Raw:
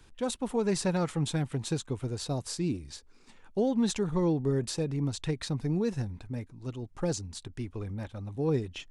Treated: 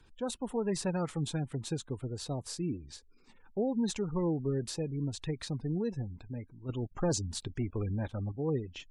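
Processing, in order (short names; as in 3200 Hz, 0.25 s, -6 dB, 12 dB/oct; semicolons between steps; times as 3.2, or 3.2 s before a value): 6.69–8.32 sample leveller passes 2; spectral gate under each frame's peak -30 dB strong; gain -4 dB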